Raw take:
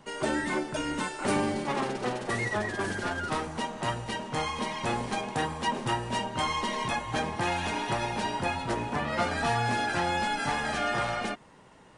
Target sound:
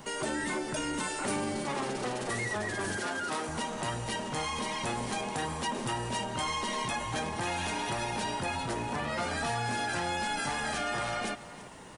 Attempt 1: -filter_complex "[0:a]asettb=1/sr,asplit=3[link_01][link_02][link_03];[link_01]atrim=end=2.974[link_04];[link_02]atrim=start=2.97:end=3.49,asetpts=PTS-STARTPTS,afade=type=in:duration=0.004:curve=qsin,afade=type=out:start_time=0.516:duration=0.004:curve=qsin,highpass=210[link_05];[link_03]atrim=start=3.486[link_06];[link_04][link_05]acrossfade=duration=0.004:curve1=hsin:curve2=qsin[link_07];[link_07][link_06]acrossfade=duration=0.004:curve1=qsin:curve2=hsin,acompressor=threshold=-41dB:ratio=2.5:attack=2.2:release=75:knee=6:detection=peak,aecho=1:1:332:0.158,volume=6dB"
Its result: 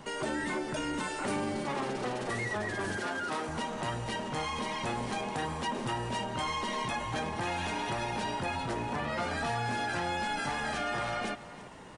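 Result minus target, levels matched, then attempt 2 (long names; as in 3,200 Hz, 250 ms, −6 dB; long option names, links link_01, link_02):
8,000 Hz band −5.5 dB
-filter_complex "[0:a]asettb=1/sr,asplit=3[link_01][link_02][link_03];[link_01]atrim=end=2.974[link_04];[link_02]atrim=start=2.97:end=3.49,asetpts=PTS-STARTPTS,afade=type=in:duration=0.004:curve=qsin,afade=type=out:start_time=0.516:duration=0.004:curve=qsin,highpass=210[link_05];[link_03]atrim=start=3.486[link_06];[link_04][link_05]acrossfade=duration=0.004:curve1=hsin:curve2=qsin[link_07];[link_07][link_06]acrossfade=duration=0.004:curve1=qsin:curve2=hsin,acompressor=threshold=-41dB:ratio=2.5:attack=2.2:release=75:knee=6:detection=peak,highshelf=frequency=7000:gain=12,aecho=1:1:332:0.158,volume=6dB"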